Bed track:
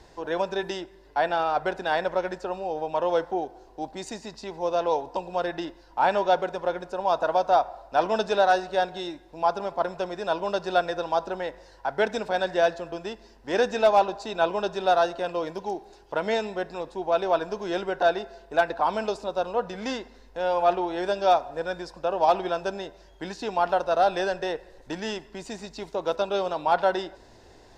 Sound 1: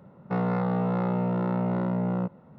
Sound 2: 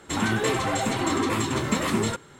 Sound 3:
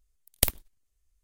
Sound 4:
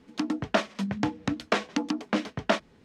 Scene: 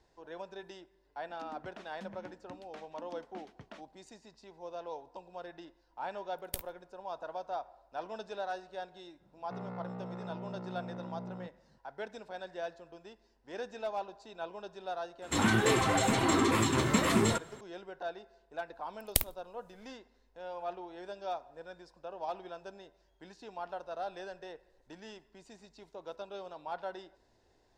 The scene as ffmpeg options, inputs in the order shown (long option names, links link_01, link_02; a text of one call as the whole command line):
ffmpeg -i bed.wav -i cue0.wav -i cue1.wav -i cue2.wav -i cue3.wav -filter_complex "[3:a]asplit=2[link_01][link_02];[0:a]volume=-17.5dB[link_03];[4:a]alimiter=limit=-20dB:level=0:latency=1:release=253[link_04];[link_01]asplit=2[link_05][link_06];[link_06]adelay=16,volume=-13.5dB[link_07];[link_05][link_07]amix=inputs=2:normalize=0[link_08];[link_02]dynaudnorm=framelen=110:gausssize=5:maxgain=12dB[link_09];[link_04]atrim=end=2.84,asetpts=PTS-STARTPTS,volume=-17.5dB,afade=type=in:duration=0.004:curve=hsin,afade=type=out:start_time=2.836:duration=0.004:curve=hsin,adelay=1220[link_10];[link_08]atrim=end=1.23,asetpts=PTS-STARTPTS,volume=-15.5dB,afade=type=in:duration=0.004:curve=hsin,afade=type=out:start_time=1.226:duration=0.004:curve=hsin,adelay=6110[link_11];[1:a]atrim=end=2.58,asetpts=PTS-STARTPTS,volume=-16.5dB,afade=type=in:duration=0.004:curve=hsin,afade=type=out:start_time=2.576:duration=0.004:curve=hsin,adelay=9200[link_12];[2:a]atrim=end=2.39,asetpts=PTS-STARTPTS,volume=-2.5dB,afade=type=in:duration=0.004:curve=hsin,afade=type=out:start_time=2.386:duration=0.004:curve=hsin,adelay=15220[link_13];[link_09]atrim=end=1.23,asetpts=PTS-STARTPTS,volume=-6dB,afade=type=in:duration=0.004:curve=hsin,afade=type=out:start_time=1.226:duration=0.004:curve=hsin,adelay=18730[link_14];[link_03][link_10][link_11][link_12][link_13][link_14]amix=inputs=6:normalize=0" out.wav